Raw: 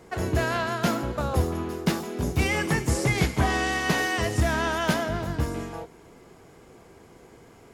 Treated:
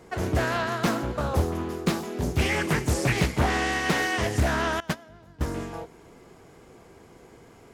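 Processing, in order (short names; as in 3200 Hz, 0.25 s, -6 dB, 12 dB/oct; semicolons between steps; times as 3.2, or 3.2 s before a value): 4.8–5.41 gate -20 dBFS, range -21 dB; Doppler distortion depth 0.72 ms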